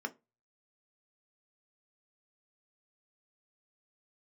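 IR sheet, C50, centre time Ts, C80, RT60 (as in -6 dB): 21.5 dB, 4 ms, 30.0 dB, 0.25 s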